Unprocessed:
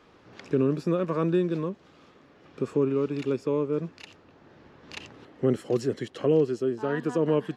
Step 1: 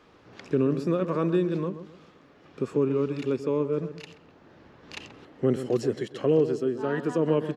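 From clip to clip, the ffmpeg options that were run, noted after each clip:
ffmpeg -i in.wav -filter_complex "[0:a]asplit=2[link_01][link_02];[link_02]adelay=131,lowpass=frequency=1500:poles=1,volume=-11dB,asplit=2[link_03][link_04];[link_04]adelay=131,lowpass=frequency=1500:poles=1,volume=0.35,asplit=2[link_05][link_06];[link_06]adelay=131,lowpass=frequency=1500:poles=1,volume=0.35,asplit=2[link_07][link_08];[link_08]adelay=131,lowpass=frequency=1500:poles=1,volume=0.35[link_09];[link_01][link_03][link_05][link_07][link_09]amix=inputs=5:normalize=0" out.wav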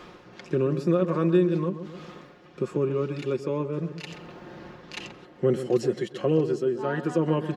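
ffmpeg -i in.wav -af "aecho=1:1:5.6:0.56,areverse,acompressor=mode=upward:threshold=-32dB:ratio=2.5,areverse" out.wav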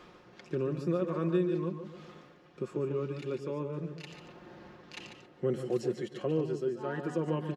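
ffmpeg -i in.wav -af "aecho=1:1:145:0.355,volume=-8dB" out.wav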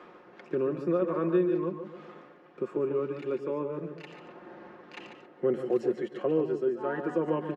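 ffmpeg -i in.wav -filter_complex "[0:a]acrossover=split=210 2400:gain=0.141 1 0.178[link_01][link_02][link_03];[link_01][link_02][link_03]amix=inputs=3:normalize=0,volume=5dB" out.wav

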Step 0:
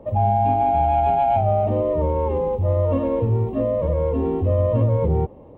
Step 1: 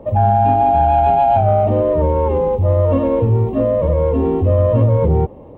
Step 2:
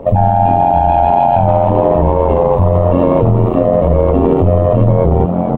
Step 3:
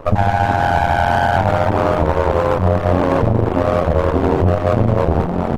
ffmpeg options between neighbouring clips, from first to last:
ffmpeg -i in.wav -af "acontrast=50" out.wav
ffmpeg -i in.wav -filter_complex "[0:a]asplit=2[link_01][link_02];[link_02]asplit=7[link_03][link_04][link_05][link_06][link_07][link_08][link_09];[link_03]adelay=445,afreqshift=65,volume=-12dB[link_10];[link_04]adelay=890,afreqshift=130,volume=-16.4dB[link_11];[link_05]adelay=1335,afreqshift=195,volume=-20.9dB[link_12];[link_06]adelay=1780,afreqshift=260,volume=-25.3dB[link_13];[link_07]adelay=2225,afreqshift=325,volume=-29.7dB[link_14];[link_08]adelay=2670,afreqshift=390,volume=-34.2dB[link_15];[link_09]adelay=3115,afreqshift=455,volume=-38.6dB[link_16];[link_10][link_11][link_12][link_13][link_14][link_15][link_16]amix=inputs=7:normalize=0[link_17];[link_01][link_17]amix=inputs=2:normalize=0,tremolo=f=88:d=0.824,alimiter=level_in=13.5dB:limit=-1dB:release=50:level=0:latency=1,volume=-1dB" out.wav
ffmpeg -i in.wav -af "aeval=exprs='max(val(0),0)':channel_layout=same" -ar 48000 -c:a libopus -b:a 16k out.opus

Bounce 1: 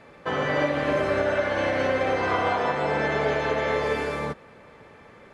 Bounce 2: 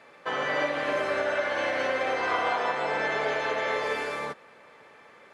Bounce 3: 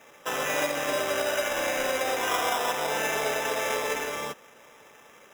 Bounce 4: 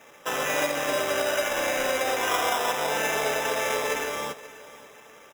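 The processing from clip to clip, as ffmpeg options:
ffmpeg -i in.wav -af "highpass=frequency=710:poles=1" out.wav
ffmpeg -i in.wav -af "acrusher=samples=10:mix=1:aa=0.000001" out.wav
ffmpeg -i in.wav -af "aecho=1:1:532|1064|1596:0.126|0.0441|0.0154,volume=1.5dB" out.wav

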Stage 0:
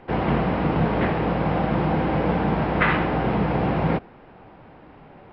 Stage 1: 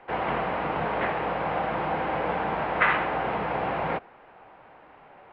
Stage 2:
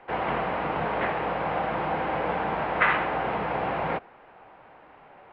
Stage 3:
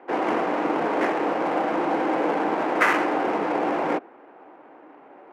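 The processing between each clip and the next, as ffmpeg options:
ffmpeg -i in.wav -filter_complex "[0:a]acrossover=split=500 3700:gain=0.178 1 0.141[link_01][link_02][link_03];[link_01][link_02][link_03]amix=inputs=3:normalize=0" out.wav
ffmpeg -i in.wav -af anull out.wav
ffmpeg -i in.wav -af "acrusher=bits=6:mode=log:mix=0:aa=0.000001,adynamicsmooth=sensitivity=6.5:basefreq=2500,highpass=frequency=300:width_type=q:width=3.7,volume=1.5dB" out.wav

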